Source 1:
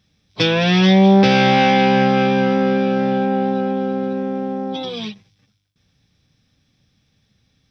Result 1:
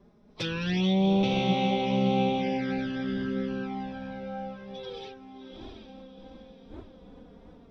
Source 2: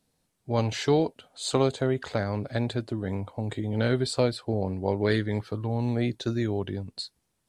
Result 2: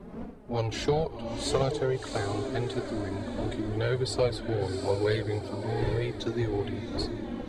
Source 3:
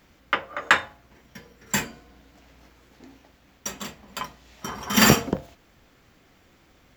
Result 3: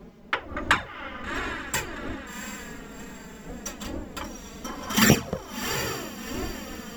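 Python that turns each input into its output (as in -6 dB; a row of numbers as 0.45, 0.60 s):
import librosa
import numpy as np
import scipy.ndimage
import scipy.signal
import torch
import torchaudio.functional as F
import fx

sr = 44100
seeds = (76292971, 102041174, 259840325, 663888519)

y = fx.dmg_wind(x, sr, seeds[0], corner_hz=340.0, level_db=-37.0)
y = fx.echo_diffused(y, sr, ms=722, feedback_pct=43, wet_db=-6.5)
y = fx.env_flanger(y, sr, rest_ms=5.3, full_db=-10.0)
y = y * 10.0 ** (-30 / 20.0) / np.sqrt(np.mean(np.square(y)))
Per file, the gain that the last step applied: -12.0, 0.0, 0.0 dB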